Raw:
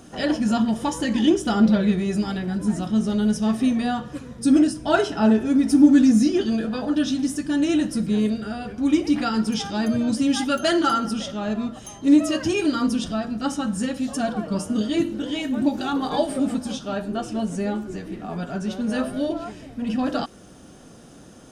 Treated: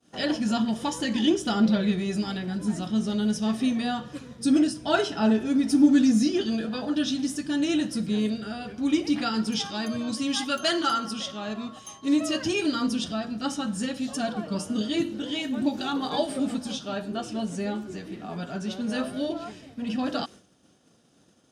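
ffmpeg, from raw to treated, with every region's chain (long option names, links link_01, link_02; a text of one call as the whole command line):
ffmpeg -i in.wav -filter_complex "[0:a]asettb=1/sr,asplit=3[link_01][link_02][link_03];[link_01]atrim=end=9.654[link_04];[link_02]atrim=start=9.65:end=12.21,asetpts=PTS-STARTPTS,afade=type=in:duration=0.004:curve=qsin,afade=type=out:start_time=2.556:duration=0.004:curve=qsin,lowshelf=frequency=490:gain=-4.5,aeval=exprs='val(0)+0.00631*sin(2*PI*1100*n/s)':channel_layout=same[link_05];[link_03]atrim=start=12.206[link_06];[link_04][link_05]acrossfade=duration=0.004:curve1=hsin:curve2=qsin[link_07];[link_07][link_06]acrossfade=duration=0.004:curve1=qsin:curve2=hsin,agate=range=-33dB:threshold=-37dB:ratio=3:detection=peak,highpass=83,equalizer=frequency=3900:width_type=o:width=1.5:gain=6,volume=-4.5dB" out.wav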